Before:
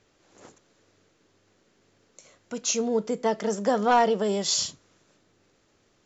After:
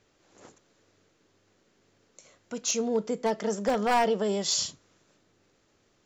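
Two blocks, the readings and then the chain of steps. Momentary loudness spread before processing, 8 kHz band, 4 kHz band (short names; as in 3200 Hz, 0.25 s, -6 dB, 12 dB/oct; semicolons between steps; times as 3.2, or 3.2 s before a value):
8 LU, n/a, -2.0 dB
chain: wavefolder -15 dBFS; gain -2 dB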